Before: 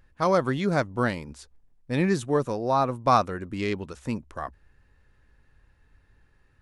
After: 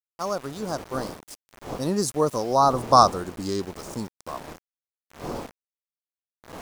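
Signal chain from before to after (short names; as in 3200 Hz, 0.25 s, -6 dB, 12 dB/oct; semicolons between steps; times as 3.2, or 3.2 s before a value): Doppler pass-by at 2.87, 22 m/s, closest 18 m; wind noise 550 Hz -43 dBFS; EQ curve 100 Hz 0 dB, 1200 Hz +6 dB, 2300 Hz -17 dB, 5000 Hz +14 dB; sample gate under -37 dBFS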